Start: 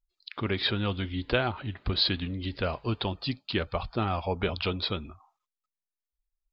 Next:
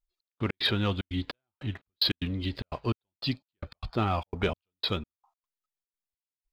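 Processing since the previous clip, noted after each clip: sample leveller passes 1; step gate "xx..x.xxxx.xx..." 149 bpm -60 dB; gain -2 dB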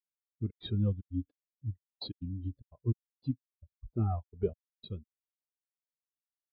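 in parallel at -5 dB: decimation with a swept rate 21×, swing 60% 3.1 Hz; on the sum: spectral expander 2.5:1; gain -8 dB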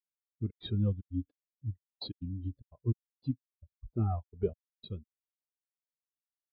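nothing audible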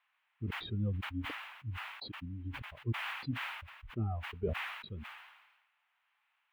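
band noise 810–2900 Hz -74 dBFS; sustainer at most 49 dB/s; gain -5 dB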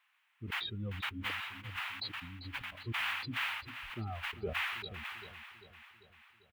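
tilt shelf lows -6.5 dB, about 770 Hz; feedback echo 0.394 s, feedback 56%, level -12.5 dB

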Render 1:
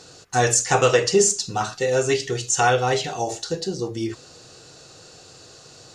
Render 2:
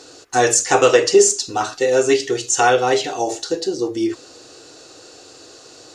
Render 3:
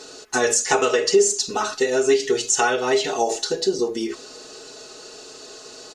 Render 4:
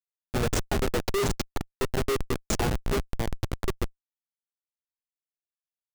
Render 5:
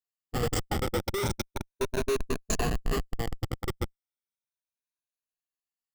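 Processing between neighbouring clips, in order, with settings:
resonant low shelf 230 Hz -7 dB, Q 3; gain +3 dB
compressor 4:1, threshold -18 dBFS, peak gain reduction 9.5 dB; comb 4.7 ms, depth 84%
notches 60/120 Hz; Schmitt trigger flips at -14 dBFS; gain -2 dB
moving spectral ripple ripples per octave 1.5, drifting +0.35 Hz, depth 12 dB; gain -4 dB

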